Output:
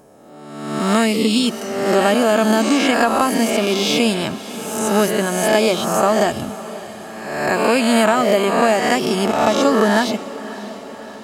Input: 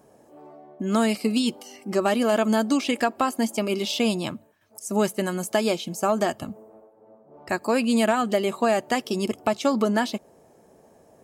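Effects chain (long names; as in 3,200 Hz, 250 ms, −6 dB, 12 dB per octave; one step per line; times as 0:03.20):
peak hold with a rise ahead of every peak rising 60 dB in 1.16 s
on a send: feedback delay with all-pass diffusion 611 ms, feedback 60%, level −16 dB
on the sum: level +4.5 dB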